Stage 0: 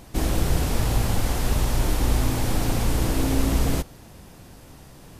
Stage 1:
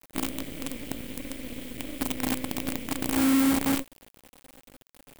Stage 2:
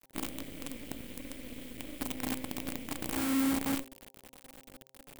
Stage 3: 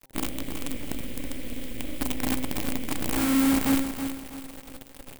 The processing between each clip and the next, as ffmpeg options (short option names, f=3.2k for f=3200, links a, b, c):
-filter_complex "[0:a]asplit=3[a][b][c];[a]bandpass=f=270:t=q:w=8,volume=0dB[d];[b]bandpass=f=2.29k:t=q:w=8,volume=-6dB[e];[c]bandpass=f=3.01k:t=q:w=8,volume=-9dB[f];[d][e][f]amix=inputs=3:normalize=0,acrusher=bits=6:dc=4:mix=0:aa=0.000001,aexciter=amount=3:drive=2.7:freq=7.8k,volume=5.5dB"
-af "areverse,acompressor=mode=upward:threshold=-34dB:ratio=2.5,areverse,bandreject=f=132.3:t=h:w=4,bandreject=f=264.6:t=h:w=4,bandreject=f=396.9:t=h:w=4,bandreject=f=529.2:t=h:w=4,bandreject=f=661.5:t=h:w=4,bandreject=f=793.8:t=h:w=4,bandreject=f=926.1:t=h:w=4,volume=-6.5dB"
-af "lowshelf=f=81:g=8,aecho=1:1:324|648|972|1296:0.376|0.139|0.0515|0.019,volume=6.5dB"